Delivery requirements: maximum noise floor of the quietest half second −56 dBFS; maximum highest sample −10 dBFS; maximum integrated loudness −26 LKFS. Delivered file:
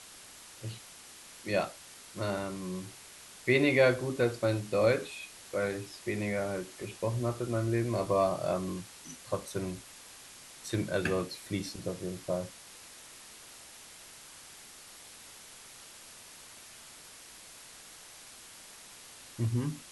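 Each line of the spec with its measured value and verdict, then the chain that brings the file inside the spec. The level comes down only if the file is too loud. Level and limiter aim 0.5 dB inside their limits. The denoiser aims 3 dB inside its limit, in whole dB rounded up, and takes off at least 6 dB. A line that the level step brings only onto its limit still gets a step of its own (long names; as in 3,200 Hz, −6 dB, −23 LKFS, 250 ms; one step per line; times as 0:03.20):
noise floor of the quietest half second −51 dBFS: out of spec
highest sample −12.0 dBFS: in spec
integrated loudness −32.5 LKFS: in spec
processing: broadband denoise 8 dB, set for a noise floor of −51 dBFS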